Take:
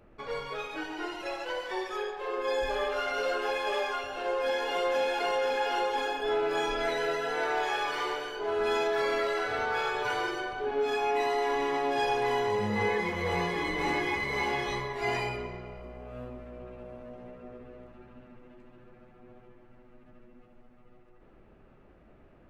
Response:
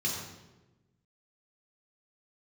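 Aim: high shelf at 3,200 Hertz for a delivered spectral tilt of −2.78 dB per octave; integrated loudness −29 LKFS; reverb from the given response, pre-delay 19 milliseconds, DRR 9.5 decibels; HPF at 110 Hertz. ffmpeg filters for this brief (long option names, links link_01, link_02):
-filter_complex "[0:a]highpass=110,highshelf=frequency=3200:gain=-9,asplit=2[link_01][link_02];[1:a]atrim=start_sample=2205,adelay=19[link_03];[link_02][link_03]afir=irnorm=-1:irlink=0,volume=-15.5dB[link_04];[link_01][link_04]amix=inputs=2:normalize=0,volume=2dB"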